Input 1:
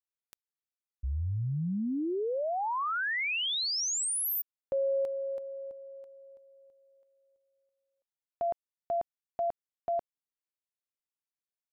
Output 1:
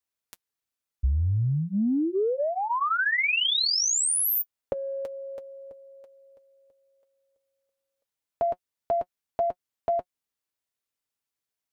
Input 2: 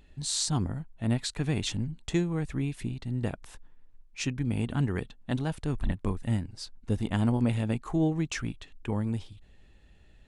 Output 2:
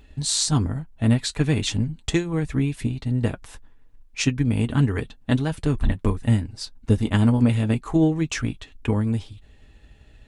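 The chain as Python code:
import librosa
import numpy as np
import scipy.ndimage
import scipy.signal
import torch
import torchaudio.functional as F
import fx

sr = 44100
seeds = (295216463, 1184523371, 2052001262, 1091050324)

y = fx.notch_comb(x, sr, f0_hz=180.0)
y = fx.transient(y, sr, attack_db=4, sustain_db=0)
y = fx.dynamic_eq(y, sr, hz=760.0, q=2.1, threshold_db=-44.0, ratio=4.0, max_db=-4)
y = y * 10.0 ** (7.5 / 20.0)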